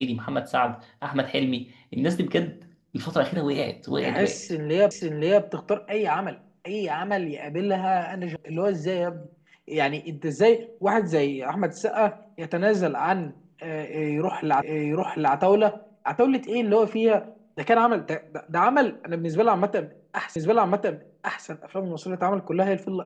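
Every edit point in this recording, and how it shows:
4.91 repeat of the last 0.52 s
8.36 sound cut off
14.62 repeat of the last 0.74 s
20.36 repeat of the last 1.1 s

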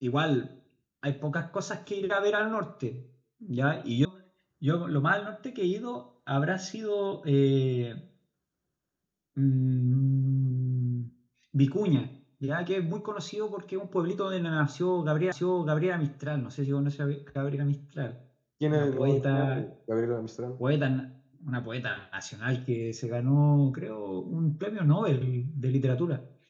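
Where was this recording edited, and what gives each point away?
4.05 sound cut off
15.32 repeat of the last 0.61 s

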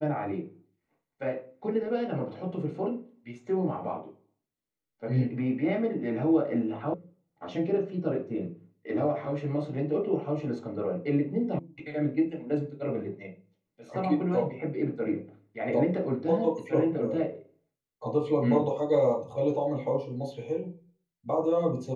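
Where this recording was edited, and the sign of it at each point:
6.94 sound cut off
11.59 sound cut off

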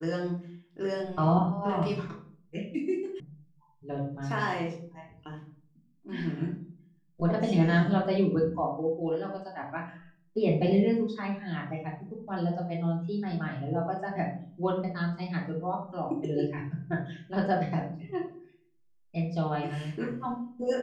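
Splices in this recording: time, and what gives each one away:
3.2 sound cut off

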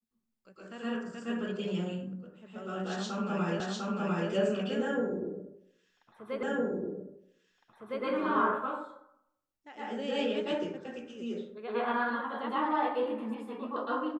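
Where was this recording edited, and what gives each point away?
3.6 repeat of the last 0.7 s
6.43 repeat of the last 1.61 s

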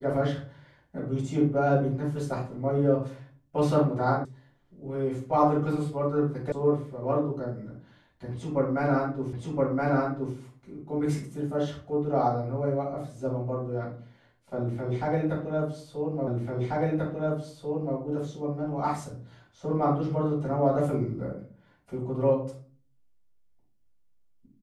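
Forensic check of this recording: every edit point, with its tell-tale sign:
4.25 sound cut off
6.52 sound cut off
9.33 repeat of the last 1.02 s
16.27 repeat of the last 1.69 s

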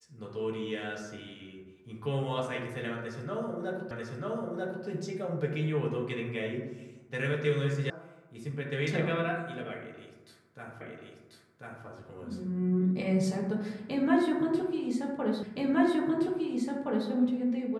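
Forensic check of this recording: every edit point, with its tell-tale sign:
3.91 repeat of the last 0.94 s
7.9 sound cut off
10.81 repeat of the last 1.04 s
15.43 repeat of the last 1.67 s

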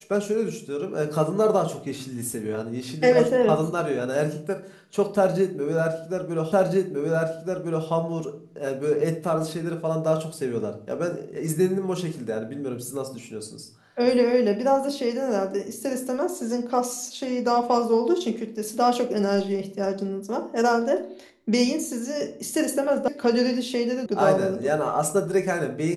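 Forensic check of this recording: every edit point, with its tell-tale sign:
6.52 repeat of the last 1.36 s
23.08 sound cut off
24.06 sound cut off

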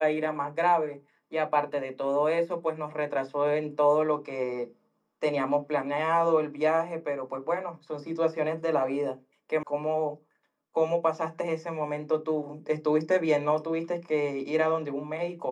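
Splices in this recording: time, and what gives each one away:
9.63 sound cut off

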